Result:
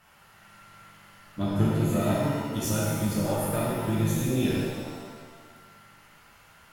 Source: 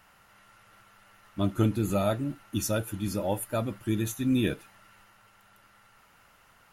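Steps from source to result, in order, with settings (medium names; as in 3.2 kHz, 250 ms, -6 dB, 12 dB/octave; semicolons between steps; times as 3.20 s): compression 2:1, threshold -29 dBFS, peak gain reduction 6 dB; Chebyshev shaper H 2 -10 dB, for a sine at -18 dBFS; pitch-shifted reverb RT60 1.6 s, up +7 st, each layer -8 dB, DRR -6.5 dB; trim -3 dB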